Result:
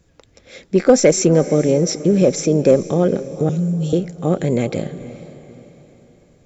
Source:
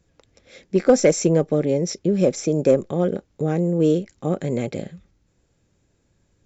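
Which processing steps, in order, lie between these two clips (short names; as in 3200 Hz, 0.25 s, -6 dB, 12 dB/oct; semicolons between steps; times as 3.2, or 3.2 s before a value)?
in parallel at -2 dB: limiter -16 dBFS, peak gain reduction 11.5 dB; 3.49–3.93 on the sum: inverse Chebyshev band-stop 520–1200 Hz, stop band 70 dB; diffused feedback echo 0.467 s, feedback 42%, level -15 dB; gain +1.5 dB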